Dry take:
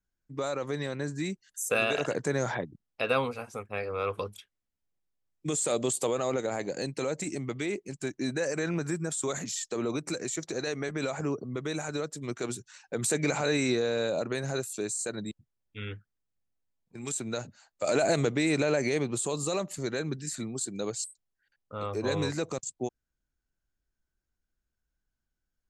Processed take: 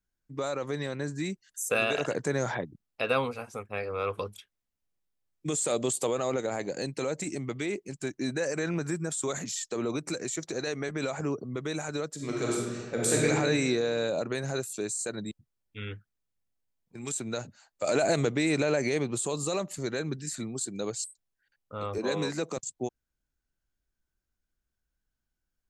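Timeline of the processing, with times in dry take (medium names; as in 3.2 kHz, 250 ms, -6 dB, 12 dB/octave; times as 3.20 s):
12.14–13.25 s: reverb throw, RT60 1.6 s, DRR -3.5 dB
21.98–22.57 s: steep high-pass 150 Hz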